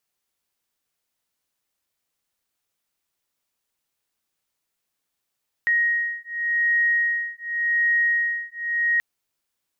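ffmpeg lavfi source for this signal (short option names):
-f lavfi -i "aevalsrc='0.075*(sin(2*PI*1880*t)+sin(2*PI*1880.88*t))':d=3.33:s=44100"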